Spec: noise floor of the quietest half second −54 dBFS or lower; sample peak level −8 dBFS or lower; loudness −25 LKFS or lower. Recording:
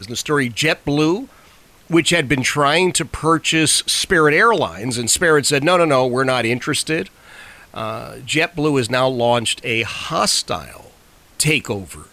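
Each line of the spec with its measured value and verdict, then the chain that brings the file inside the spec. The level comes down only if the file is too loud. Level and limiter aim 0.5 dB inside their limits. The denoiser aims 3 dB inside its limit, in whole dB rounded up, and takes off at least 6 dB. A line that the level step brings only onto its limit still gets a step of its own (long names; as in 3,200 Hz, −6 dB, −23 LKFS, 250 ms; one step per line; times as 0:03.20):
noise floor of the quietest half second −49 dBFS: out of spec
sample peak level −4.5 dBFS: out of spec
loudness −17.0 LKFS: out of spec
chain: level −8.5 dB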